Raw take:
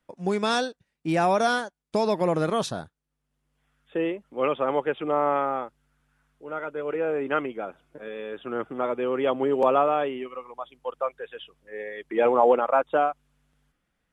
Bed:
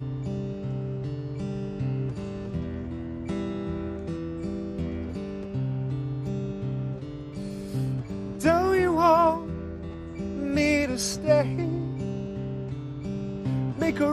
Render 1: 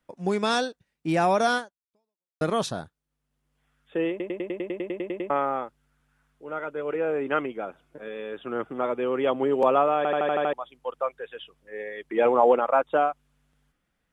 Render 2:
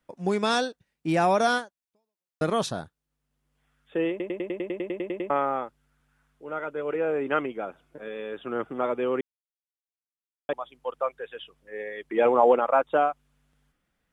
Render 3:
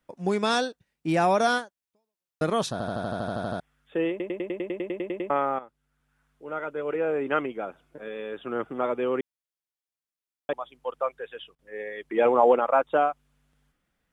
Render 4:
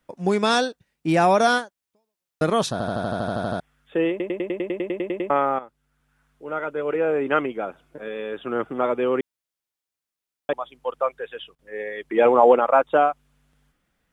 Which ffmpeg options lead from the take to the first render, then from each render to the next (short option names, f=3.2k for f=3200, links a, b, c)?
-filter_complex "[0:a]asplit=21[a][b][c][d][e][f][g][h][i][j][k][l][m][n][o][p][q][r][s][t][u];[a]atrim=end=2.41,asetpts=PTS-STARTPTS,afade=t=out:st=1.57:d=0.84:c=exp[v];[b]atrim=start=2.41:end=4.202,asetpts=PTS-STARTPTS,afade=t=in:d=0.004:c=hsin[w];[c]atrim=start=4.098:end=4.202[x];[d]atrim=start=4.098:end=4.202[y];[e]atrim=start=4.098:end=4.202[z];[f]atrim=start=4.098:end=4.202[aa];[g]atrim=start=4.098:end=4.202[ab];[h]atrim=start=4.098:end=4.202[ac];[i]atrim=start=4.098:end=4.202[ad];[j]atrim=start=4.098:end=4.202[ae];[k]atrim=start=4.098:end=4.202[af];[l]atrim=start=4.098:end=4.202[ag];[m]atrim=start=4.098:end=4.202[ah];[n]atrim=start=5.298:end=10.052[ai];[o]atrim=start=9.968:end=10.052[aj];[p]atrim=start=9.968:end=10.052[ak];[q]atrim=start=9.968:end=10.052[al];[r]atrim=start=9.968:end=10.052[am];[s]atrim=start=9.968:end=10.052[an];[t]atrim=start=9.968:end=10.052[ao];[u]atrim=start=10.528[ap];[v][w]concat=n=2:v=0:a=1[aq];[aq][x]acrossfade=d=0.004:c1=hsin:c2=hsin[ar];[ar][y]acrossfade=d=0.004:c1=hsin:c2=hsin[as];[as][z]acrossfade=d=0.004:c1=hsin:c2=hsin[at];[at][aa]acrossfade=d=0.004:c1=hsin:c2=hsin[au];[au][ab]acrossfade=d=0.004:c1=hsin:c2=hsin[av];[av][ac]acrossfade=d=0.004:c1=hsin:c2=hsin[aw];[aw][ad]acrossfade=d=0.004:c1=hsin:c2=hsin[ax];[ax][ae]acrossfade=d=0.004:c1=hsin:c2=hsin[ay];[ay][af]acrossfade=d=0.004:c1=hsin:c2=hsin[az];[az][ag]acrossfade=d=0.004:c1=hsin:c2=hsin[ba];[ba][ah]acrossfade=d=0.004:c1=hsin:c2=hsin[bb];[bb][ai]acrossfade=d=0.004:c1=hsin:c2=hsin[bc];[bc][aj]acrossfade=d=0.004:c1=hsin:c2=hsin[bd];[bd][ak]acrossfade=d=0.004:c1=hsin:c2=hsin[be];[be][al]acrossfade=d=0.004:c1=hsin:c2=hsin[bf];[bf][am]acrossfade=d=0.004:c1=hsin:c2=hsin[bg];[bg][an]acrossfade=d=0.004:c1=hsin:c2=hsin[bh];[bh][ao]acrossfade=d=0.004:c1=hsin:c2=hsin[bi];[bi][ap]acrossfade=d=0.004:c1=hsin:c2=hsin"
-filter_complex "[0:a]asplit=3[a][b][c];[a]atrim=end=9.21,asetpts=PTS-STARTPTS,afade=t=out:st=9.206:d=0.004:c=hsin[d];[b]atrim=start=9.21:end=10.49,asetpts=PTS-STARTPTS,volume=0[e];[c]atrim=start=10.49,asetpts=PTS-STARTPTS,afade=t=in:d=0.004:c=hsin[f];[d][e][f]concat=n=3:v=0:a=1"
-filter_complex "[0:a]asplit=15[a][b][c][d][e][f][g][h][i][j][k][l][m][n][o];[a]atrim=end=2.802[p];[b]atrim=start=2.718:end=2.802[q];[c]atrim=start=2.718:end=2.802[r];[d]atrim=start=2.718:end=2.802[s];[e]atrim=start=2.718:end=2.802[t];[f]atrim=start=2.718:end=2.802[u];[g]atrim=start=2.718:end=2.802[v];[h]atrim=start=2.718:end=2.802[w];[i]atrim=start=2.718:end=2.802[x];[j]atrim=start=2.718:end=2.802[y];[k]atrim=start=2.718:end=2.802[z];[l]atrim=start=3.598:end=5.59,asetpts=PTS-STARTPTS,afade=t=out:st=1.988:d=0.004:c=hsin:silence=0.251189[aa];[m]atrim=start=5.59:end=11.55,asetpts=PTS-STARTPTS,afade=t=in:d=0.87:silence=0.251189,afade=t=out:st=5.64:d=0.32:c=log:silence=0.1[ab];[n]atrim=start=11.55:end=11.59,asetpts=PTS-STARTPTS,volume=-20dB[ac];[o]atrim=start=11.59,asetpts=PTS-STARTPTS,afade=t=in:d=0.32:c=log:silence=0.1[ad];[p][q]acrossfade=d=0.004:c1=hsin:c2=hsin[ae];[ae][r]acrossfade=d=0.004:c1=hsin:c2=hsin[af];[af][s]acrossfade=d=0.004:c1=hsin:c2=hsin[ag];[ag][t]acrossfade=d=0.004:c1=hsin:c2=hsin[ah];[ah][u]acrossfade=d=0.004:c1=hsin:c2=hsin[ai];[ai][v]acrossfade=d=0.004:c1=hsin:c2=hsin[aj];[aj][w]acrossfade=d=0.004:c1=hsin:c2=hsin[ak];[ak][x]acrossfade=d=0.004:c1=hsin:c2=hsin[al];[al][y]acrossfade=d=0.004:c1=hsin:c2=hsin[am];[am][z]acrossfade=d=0.004:c1=hsin:c2=hsin[an];[aa][ab][ac][ad]concat=n=4:v=0:a=1[ao];[an][ao]acrossfade=d=0.004:c1=hsin:c2=hsin"
-af "volume=4.5dB,alimiter=limit=-3dB:level=0:latency=1"